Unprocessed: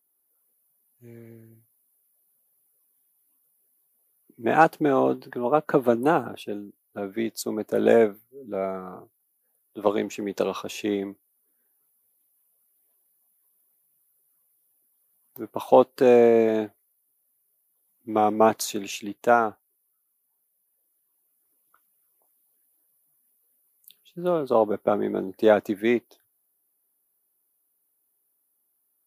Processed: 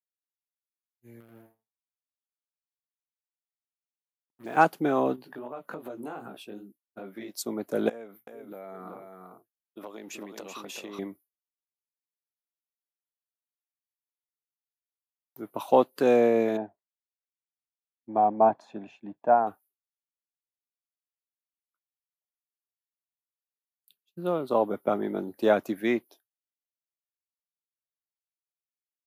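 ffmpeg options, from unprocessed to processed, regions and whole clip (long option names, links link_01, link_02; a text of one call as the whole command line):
ffmpeg -i in.wav -filter_complex "[0:a]asettb=1/sr,asplit=3[link_01][link_02][link_03];[link_01]atrim=end=1.204[link_04];[link_02]atrim=start=1.2:end=4.57,asetpts=PTS-STARTPTS,afade=type=in:duration=0.004:curve=qsin,afade=type=out:start_time=3.366:duration=0.004:curve=qsin,acrusher=bits=6:mix=0:aa=0.5,acompressor=threshold=-49dB:ratio=1.5:attack=3.2:release=140:knee=1:detection=peak,asplit=6[link_05][link_06][link_07][link_08][link_09][link_10];[link_06]adelay=84,afreqshift=110,volume=-3dB[link_11];[link_07]adelay=168,afreqshift=220,volume=-12.1dB[link_12];[link_08]adelay=252,afreqshift=330,volume=-21.2dB[link_13];[link_09]adelay=336,afreqshift=440,volume=-30.4dB[link_14];[link_10]adelay=420,afreqshift=550,volume=-39.5dB[link_15];[link_05][link_11][link_12][link_13][link_14][link_15]amix=inputs=6:normalize=0,atrim=end_sample=148617[link_16];[link_03]atrim=start=4.566[link_17];[link_04][link_16]acrossfade=duration=0.004:curve1=hsin:curve2=qsin[link_18];[link_18][link_17]acrossfade=duration=0.004:curve1=qsin:curve2=hsin,asettb=1/sr,asplit=3[link_19][link_20][link_21];[link_19]atrim=end=5.164[link_22];[link_20]atrim=start=5.16:end=7.34,asetpts=PTS-STARTPTS,afade=type=in:duration=0.004:curve=qsin,afade=type=out:start_time=2.176:duration=0.004:curve=qsin,flanger=delay=15:depth=5.1:speed=2.6,equalizer=frequency=70:width_type=o:width=1.6:gain=-5.5,acompressor=threshold=-31dB:ratio=6:attack=3.2:release=140:knee=1:detection=peak[link_23];[link_21]atrim=start=7.336[link_24];[link_22][link_23]acrossfade=duration=0.004:curve1=hsin:curve2=qsin[link_25];[link_25][link_24]acrossfade=duration=0.004:curve1=qsin:curve2=hsin,asettb=1/sr,asplit=3[link_26][link_27][link_28];[link_26]atrim=end=7.894[link_29];[link_27]atrim=start=7.89:end=10.99,asetpts=PTS-STARTPTS,afade=type=in:duration=0.004:curve=qsin,afade=type=out:start_time=3.096:duration=0.004:curve=qsin,lowshelf=frequency=120:gain=-10.5,acompressor=threshold=-33dB:ratio=12:attack=3.2:release=140:knee=1:detection=peak,aecho=1:1:381:0.562,atrim=end_sample=136710[link_30];[link_28]atrim=start=10.986[link_31];[link_29][link_30]acrossfade=duration=0.004:curve1=hsin:curve2=qsin[link_32];[link_32][link_31]acrossfade=duration=0.004:curve1=qsin:curve2=hsin,asettb=1/sr,asplit=3[link_33][link_34][link_35];[link_33]atrim=end=16.574[link_36];[link_34]atrim=start=16.57:end=19.47,asetpts=PTS-STARTPTS,afade=type=in:duration=0.004:curve=qsin,afade=type=out:start_time=2.896:duration=0.004:curve=qsin,bandpass=frequency=690:width_type=q:width=1.2,aemphasis=mode=reproduction:type=riaa,aecho=1:1:1.2:0.46,atrim=end_sample=127890[link_37];[link_35]atrim=start=19.466[link_38];[link_36][link_37]acrossfade=duration=0.004:curve1=hsin:curve2=qsin[link_39];[link_39][link_38]acrossfade=duration=0.004:curve1=qsin:curve2=hsin,agate=range=-33dB:threshold=-44dB:ratio=3:detection=peak,highpass=110,equalizer=frequency=440:width_type=o:width=0.67:gain=-3,volume=-2.5dB" out.wav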